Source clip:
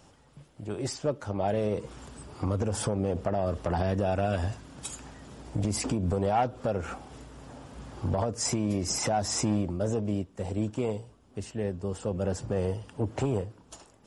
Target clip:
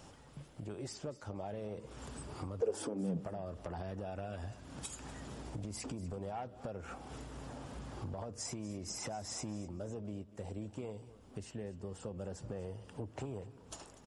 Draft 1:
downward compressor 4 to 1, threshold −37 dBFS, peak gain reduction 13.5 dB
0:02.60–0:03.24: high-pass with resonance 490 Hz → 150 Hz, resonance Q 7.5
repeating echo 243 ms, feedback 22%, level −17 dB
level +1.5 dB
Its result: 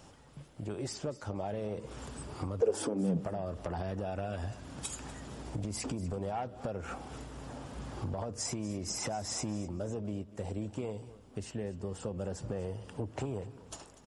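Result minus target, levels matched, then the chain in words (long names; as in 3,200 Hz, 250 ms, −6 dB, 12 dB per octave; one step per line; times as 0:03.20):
downward compressor: peak gain reduction −5.5 dB
downward compressor 4 to 1, threshold −44.5 dBFS, peak gain reduction 19 dB
0:02.60–0:03.24: high-pass with resonance 490 Hz → 150 Hz, resonance Q 7.5
repeating echo 243 ms, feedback 22%, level −17 dB
level +1.5 dB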